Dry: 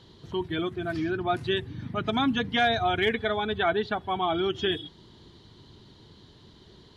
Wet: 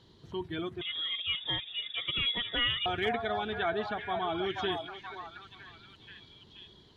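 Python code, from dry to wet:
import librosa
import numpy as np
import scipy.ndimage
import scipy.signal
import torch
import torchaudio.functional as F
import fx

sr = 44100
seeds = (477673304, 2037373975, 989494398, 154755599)

y = fx.echo_stepped(x, sr, ms=480, hz=760.0, octaves=0.7, feedback_pct=70, wet_db=-3.5)
y = fx.freq_invert(y, sr, carrier_hz=3600, at=(0.81, 2.86))
y = F.gain(torch.from_numpy(y), -6.5).numpy()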